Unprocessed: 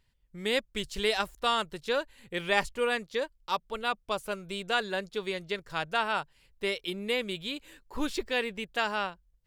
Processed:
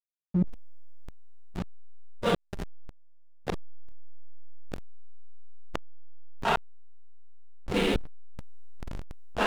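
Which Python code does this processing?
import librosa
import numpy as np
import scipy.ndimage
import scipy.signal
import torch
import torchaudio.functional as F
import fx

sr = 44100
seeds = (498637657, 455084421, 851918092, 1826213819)

p1 = fx.wiener(x, sr, points=41)
p2 = fx.peak_eq(p1, sr, hz=92.0, db=-9.5, octaves=0.41)
p3 = fx.rider(p2, sr, range_db=4, speed_s=2.0)
p4 = p2 + F.gain(torch.from_numpy(p3), 3.0).numpy()
p5 = fx.rev_double_slope(p4, sr, seeds[0], early_s=0.44, late_s=4.8, knee_db=-20, drr_db=-9.5)
p6 = fx.gate_flip(p5, sr, shuts_db=-16.0, range_db=-39)
p7 = p6 + fx.echo_thinned(p6, sr, ms=1197, feedback_pct=69, hz=190.0, wet_db=-19, dry=0)
p8 = fx.backlash(p7, sr, play_db=-33.5)
y = fx.env_flatten(p8, sr, amount_pct=70)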